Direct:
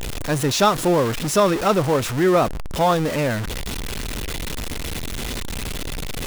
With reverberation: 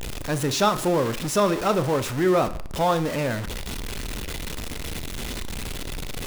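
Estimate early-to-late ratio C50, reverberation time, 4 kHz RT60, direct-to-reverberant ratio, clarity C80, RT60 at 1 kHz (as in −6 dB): 15.0 dB, 0.55 s, 0.40 s, 12.0 dB, 19.0 dB, 0.55 s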